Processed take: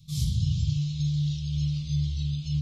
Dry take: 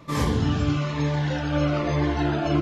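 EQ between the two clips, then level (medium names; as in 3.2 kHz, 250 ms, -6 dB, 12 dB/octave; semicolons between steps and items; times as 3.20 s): elliptic band-stop 150–3700 Hz, stop band 40 dB; 0.0 dB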